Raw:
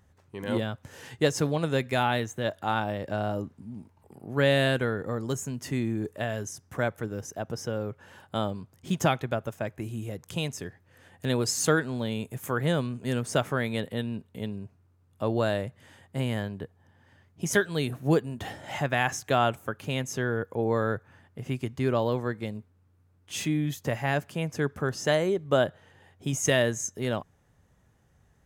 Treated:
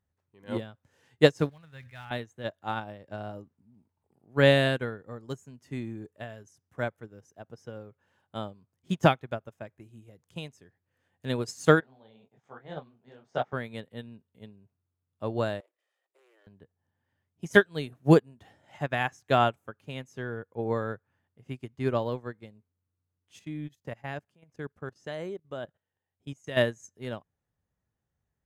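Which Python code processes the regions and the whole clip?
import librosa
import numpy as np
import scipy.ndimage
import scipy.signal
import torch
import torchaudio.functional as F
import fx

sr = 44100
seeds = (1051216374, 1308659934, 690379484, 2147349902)

y = fx.chain(x, sr, fx.block_float(bits=5),
    fx.curve_eq(hz=(110.0, 340.0, 1800.0, 6300.0), db=(0, -20, -2, -11)),
    fx.sustainer(db_per_s=27.0), at=(1.49, 2.11))
y = fx.chain(y, sr, fx.cabinet(low_hz=160.0, low_slope=12, high_hz=5200.0, hz=(290.0, 770.0, 2600.0, 4400.0), db=(-6, 10, -5, -4)),
    fx.detune_double(cents=60), at=(11.8, 13.53))
y = fx.chain(y, sr, fx.lower_of_two(delay_ms=1.6),
    fx.steep_highpass(hz=320.0, slope=96),
    fx.level_steps(step_db=9), at=(15.6, 16.47))
y = fx.chain(y, sr, fx.high_shelf(hz=9000.0, db=-3.5),
    fx.level_steps(step_db=14), at=(23.39, 26.57))
y = fx.high_shelf(y, sr, hz=9500.0, db=-7.5)
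y = fx.upward_expand(y, sr, threshold_db=-36.0, expansion=2.5)
y = F.gain(torch.from_numpy(y), 6.5).numpy()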